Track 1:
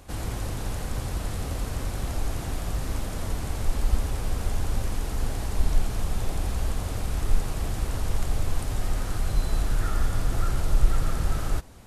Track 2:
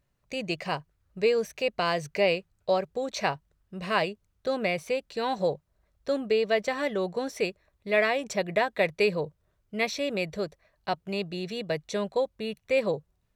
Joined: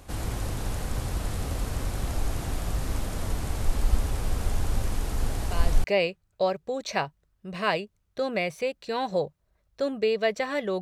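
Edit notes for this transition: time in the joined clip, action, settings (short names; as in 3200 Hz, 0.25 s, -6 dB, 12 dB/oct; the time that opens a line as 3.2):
track 1
5.43 add track 2 from 1.71 s 0.41 s -9.5 dB
5.84 switch to track 2 from 2.12 s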